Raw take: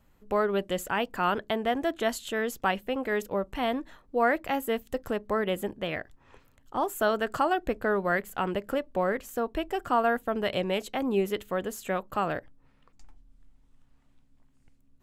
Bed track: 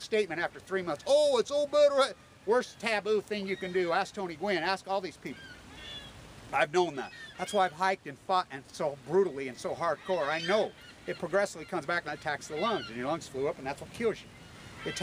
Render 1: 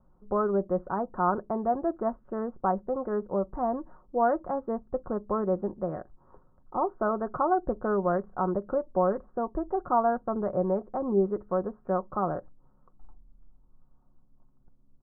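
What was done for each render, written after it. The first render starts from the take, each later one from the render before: steep low-pass 1300 Hz 48 dB/oct; comb 5.5 ms, depth 41%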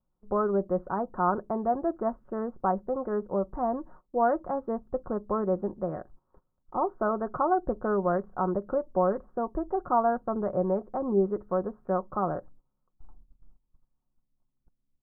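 gate -50 dBFS, range -17 dB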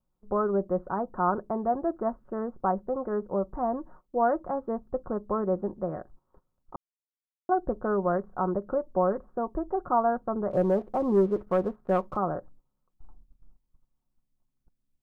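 6.76–7.49 mute; 10.51–12.17 sample leveller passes 1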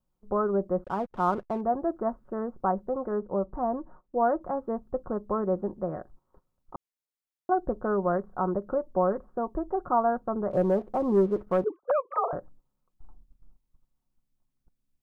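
0.84–1.61 backlash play -41 dBFS; 3.11–4.41 LPF 1800 Hz; 11.64–12.33 sine-wave speech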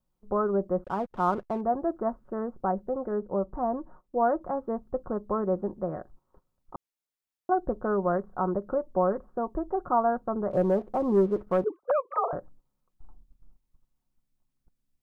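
2.58–3.32 bell 1100 Hz -5 dB 0.6 oct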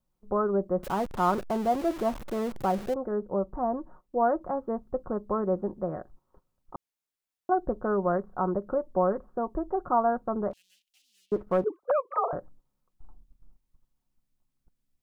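0.83–2.94 zero-crossing step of -34.5 dBFS; 10.53–11.32 elliptic high-pass 2800 Hz, stop band 60 dB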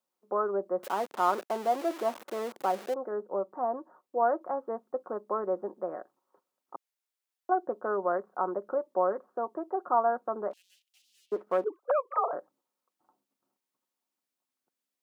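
Bessel high-pass 430 Hz, order 4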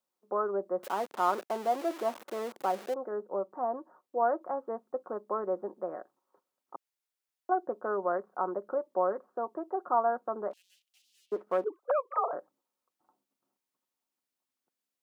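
gain -1.5 dB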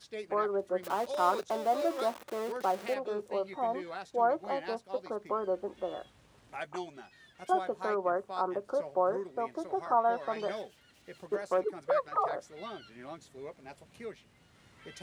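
add bed track -12.5 dB

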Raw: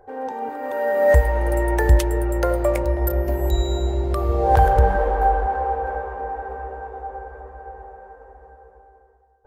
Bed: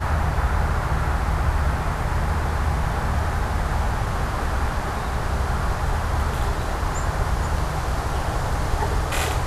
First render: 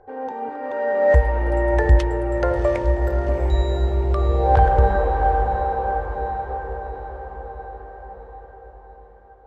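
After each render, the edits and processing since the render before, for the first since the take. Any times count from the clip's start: air absorption 140 m; diffused feedback echo 0.729 s, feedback 52%, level -9.5 dB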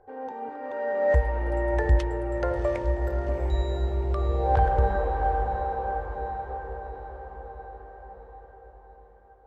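gain -6.5 dB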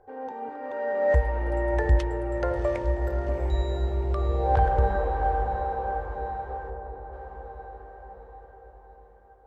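6.7–7.13 LPF 1300 Hz 6 dB/oct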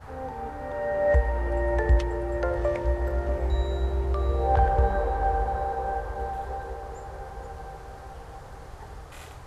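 add bed -20.5 dB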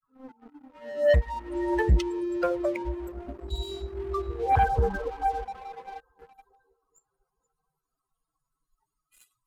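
per-bin expansion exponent 3; sample leveller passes 2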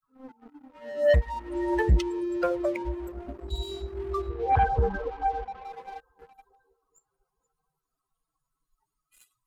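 4.29–5.65 air absorption 120 m

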